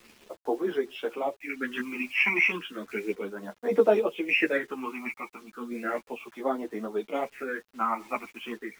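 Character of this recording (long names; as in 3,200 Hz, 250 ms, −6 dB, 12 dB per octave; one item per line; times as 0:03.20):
phaser sweep stages 8, 0.34 Hz, lowest notch 460–2,500 Hz
a quantiser's noise floor 10 bits, dither none
sample-and-hold tremolo
a shimmering, thickened sound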